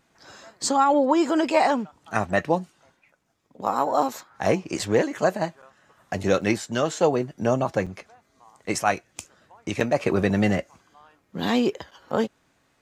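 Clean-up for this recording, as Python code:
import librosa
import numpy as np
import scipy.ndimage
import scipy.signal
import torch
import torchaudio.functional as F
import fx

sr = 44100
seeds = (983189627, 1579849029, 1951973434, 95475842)

y = fx.fix_interpolate(x, sr, at_s=(4.79, 5.62, 6.41, 7.86, 9.8, 11.91), length_ms=5.8)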